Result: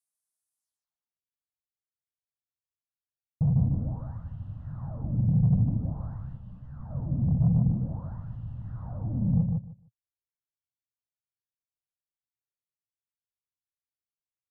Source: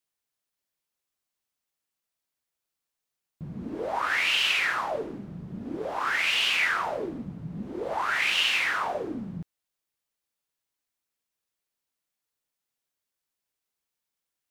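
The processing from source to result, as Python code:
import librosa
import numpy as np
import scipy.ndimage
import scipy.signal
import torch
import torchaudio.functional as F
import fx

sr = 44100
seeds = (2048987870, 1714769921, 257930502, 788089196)

p1 = fx.high_shelf(x, sr, hz=5800.0, db=11.0)
p2 = fx.leveller(p1, sr, passes=1)
p3 = fx.rider(p2, sr, range_db=3, speed_s=0.5)
p4 = p2 + F.gain(torch.from_numpy(p3), -1.5).numpy()
p5 = fx.leveller(p4, sr, passes=5)
p6 = fx.filter_sweep_lowpass(p5, sr, from_hz=10000.0, to_hz=120.0, start_s=0.58, end_s=1.22, q=2.6)
p7 = 10.0 ** (-11.0 / 20.0) * np.tanh(p6 / 10.0 ** (-11.0 / 20.0))
p8 = fx.fixed_phaser(p7, sr, hz=950.0, stages=4)
p9 = p8 + fx.echo_feedback(p8, sr, ms=151, feedback_pct=17, wet_db=-3.5, dry=0)
p10 = fx.ensemble(p9, sr, at=(6.36, 6.89), fade=0.02)
y = F.gain(torch.from_numpy(p10), -7.0).numpy()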